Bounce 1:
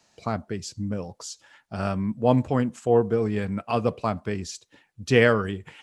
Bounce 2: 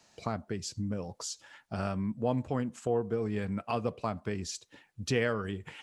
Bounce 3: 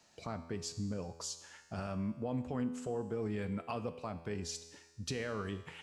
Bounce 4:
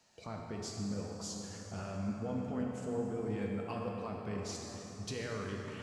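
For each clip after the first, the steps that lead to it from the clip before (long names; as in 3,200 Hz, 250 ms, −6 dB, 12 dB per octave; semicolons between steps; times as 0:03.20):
downward compressor 2 to 1, threshold −34 dBFS, peak gain reduction 11.5 dB
brickwall limiter −24 dBFS, peak gain reduction 9.5 dB; tuned comb filter 83 Hz, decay 1.3 s, harmonics all, mix 70%; level +6 dB
dense smooth reverb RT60 4.5 s, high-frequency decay 0.55×, DRR −0.5 dB; level −3.5 dB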